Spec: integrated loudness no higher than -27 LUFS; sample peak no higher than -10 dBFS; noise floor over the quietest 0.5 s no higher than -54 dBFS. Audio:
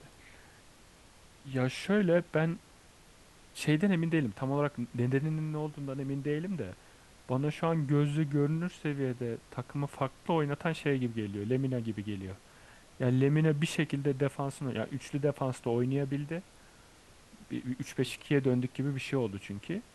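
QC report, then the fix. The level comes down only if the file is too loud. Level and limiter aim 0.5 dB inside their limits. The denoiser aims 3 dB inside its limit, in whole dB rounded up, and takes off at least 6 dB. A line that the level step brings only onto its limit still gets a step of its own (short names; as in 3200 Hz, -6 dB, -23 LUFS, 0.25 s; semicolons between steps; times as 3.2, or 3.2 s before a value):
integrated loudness -32.0 LUFS: OK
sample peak -14.5 dBFS: OK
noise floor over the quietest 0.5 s -58 dBFS: OK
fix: none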